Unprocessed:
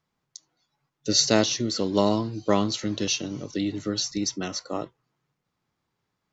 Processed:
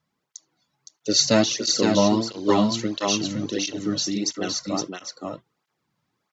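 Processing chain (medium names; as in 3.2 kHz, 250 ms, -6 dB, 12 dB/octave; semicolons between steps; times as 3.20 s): delay 515 ms -4 dB; cancelling through-zero flanger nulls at 1.5 Hz, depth 2.8 ms; trim +4.5 dB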